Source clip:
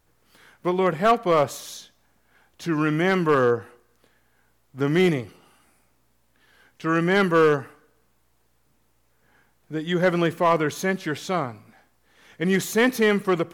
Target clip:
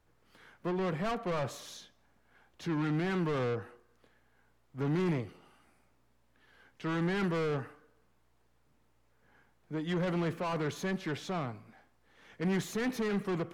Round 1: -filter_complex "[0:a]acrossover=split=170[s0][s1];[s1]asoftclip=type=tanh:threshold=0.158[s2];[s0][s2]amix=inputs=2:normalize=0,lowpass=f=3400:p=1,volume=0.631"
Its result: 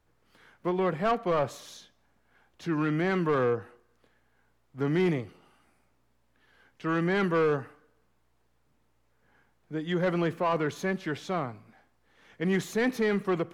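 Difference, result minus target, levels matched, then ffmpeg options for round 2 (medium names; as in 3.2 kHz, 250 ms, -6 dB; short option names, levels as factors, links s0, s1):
saturation: distortion -9 dB
-filter_complex "[0:a]acrossover=split=170[s0][s1];[s1]asoftclip=type=tanh:threshold=0.0422[s2];[s0][s2]amix=inputs=2:normalize=0,lowpass=f=3400:p=1,volume=0.631"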